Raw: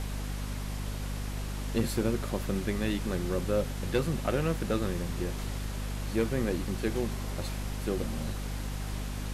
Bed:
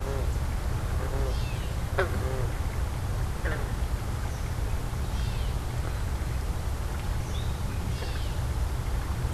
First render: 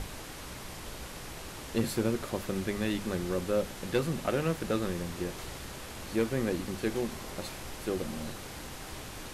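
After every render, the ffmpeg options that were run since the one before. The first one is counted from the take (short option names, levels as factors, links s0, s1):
-af "bandreject=f=50:t=h:w=6,bandreject=f=100:t=h:w=6,bandreject=f=150:t=h:w=6,bandreject=f=200:t=h:w=6,bandreject=f=250:t=h:w=6"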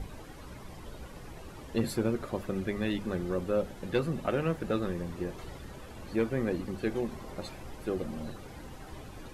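-af "afftdn=nr=12:nf=-43"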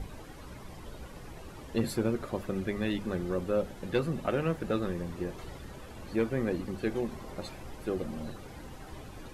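-af anull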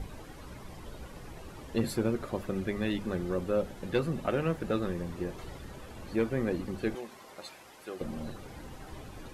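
-filter_complex "[0:a]asettb=1/sr,asplit=3[s0][s1][s2];[s0]atrim=end=6.954[s3];[s1]atrim=start=6.95:end=8.01,asetpts=PTS-STARTPTS,afade=t=in:d=0.004:c=qsin,afade=t=out:st=1.056:d=0.004:c=qsin,highpass=f=1000:p=1[s4];[s2]atrim=start=8.006[s5];[s3][s4]acrossfade=d=0.004:c1=hsin:c2=qsin[s6];[s6][s5]acrossfade=d=0.004:c1=qsin:c2=hsin"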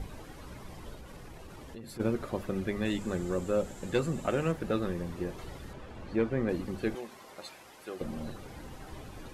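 -filter_complex "[0:a]asplit=3[s0][s1][s2];[s0]afade=t=out:st=0.94:d=0.02[s3];[s1]acompressor=threshold=0.00794:ratio=6:attack=3.2:release=140:knee=1:detection=peak,afade=t=in:st=0.94:d=0.02,afade=t=out:st=1.99:d=0.02[s4];[s2]afade=t=in:st=1.99:d=0.02[s5];[s3][s4][s5]amix=inputs=3:normalize=0,asettb=1/sr,asplit=3[s6][s7][s8];[s6]atrim=end=2.854[s9];[s7]atrim=start=2.85:end=4.52,asetpts=PTS-STARTPTS,afade=t=in:d=0.004:c=qsin,afade=t=out:st=1.666:d=0.004:c=qsin,equalizer=f=7400:t=o:w=0.35:g=14[s10];[s8]atrim=start=4.516[s11];[s9][s10]acrossfade=d=0.004:c1=hsin:c2=qsin[s12];[s12][s11]acrossfade=d=0.004:c1=qsin:c2=hsin,asettb=1/sr,asplit=3[s13][s14][s15];[s13]atrim=end=5.734[s16];[s14]atrim=start=5.73:end=6.49,asetpts=PTS-STARTPTS,afade=t=in:d=0.004:c=qsin,afade=t=out:st=0.756:d=0.004:c=qsin,aemphasis=mode=reproduction:type=50fm[s17];[s15]atrim=start=6.486[s18];[s16][s17]acrossfade=d=0.004:c1=hsin:c2=qsin[s19];[s19][s18]acrossfade=d=0.004:c1=qsin:c2=hsin"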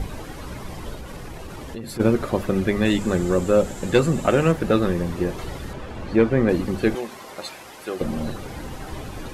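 -af "volume=3.76"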